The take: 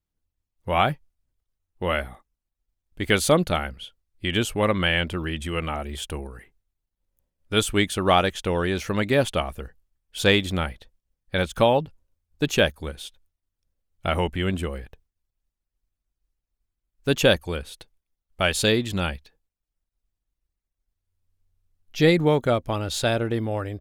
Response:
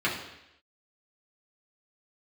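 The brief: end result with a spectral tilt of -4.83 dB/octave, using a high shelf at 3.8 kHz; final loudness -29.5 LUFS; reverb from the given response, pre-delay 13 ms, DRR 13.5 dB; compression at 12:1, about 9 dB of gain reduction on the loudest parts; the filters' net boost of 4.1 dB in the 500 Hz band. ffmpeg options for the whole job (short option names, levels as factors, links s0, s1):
-filter_complex "[0:a]equalizer=f=500:t=o:g=5,highshelf=f=3800:g=-9,acompressor=threshold=0.112:ratio=12,asplit=2[s0][s1];[1:a]atrim=start_sample=2205,adelay=13[s2];[s1][s2]afir=irnorm=-1:irlink=0,volume=0.0531[s3];[s0][s3]amix=inputs=2:normalize=0,volume=0.75"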